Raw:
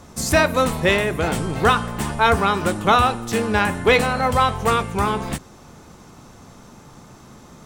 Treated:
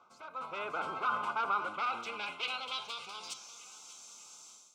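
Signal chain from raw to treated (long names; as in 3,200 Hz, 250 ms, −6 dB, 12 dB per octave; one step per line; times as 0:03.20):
wavefolder on the positive side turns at −15 dBFS
reversed playback
downward compressor 8 to 1, threshold −28 dBFS, peak gain reduction 16 dB
reversed playback
low-shelf EQ 120 Hz −10.5 dB
hum removal 72.67 Hz, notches 8
phase-vocoder stretch with locked phases 0.62×
Butterworth band-reject 1,800 Hz, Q 2.2
parametric band 11,000 Hz −8 dB 1.2 octaves
brickwall limiter −29 dBFS, peak gain reduction 7.5 dB
band-pass filter sweep 1,400 Hz → 7,200 Hz, 0:01.58–0:03.65
on a send: feedback echo with a high-pass in the loop 591 ms, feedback 44%, level −16.5 dB
on the sum: automatic gain control gain up to 15 dB
level −3 dB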